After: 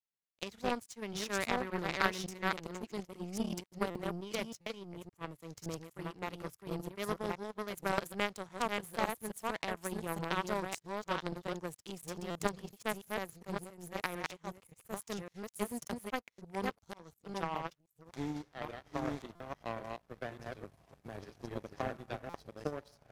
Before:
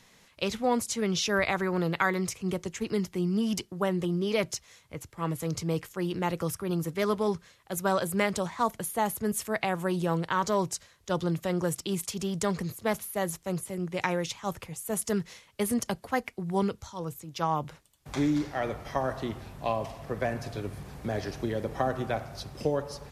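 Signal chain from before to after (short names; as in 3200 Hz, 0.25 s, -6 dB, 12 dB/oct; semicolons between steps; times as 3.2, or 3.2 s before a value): reverse delay 0.566 s, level -1.5 dB; power-law curve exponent 2; stuck buffer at 3.9/4.61/12.3/19.35/22.29, samples 256, times 8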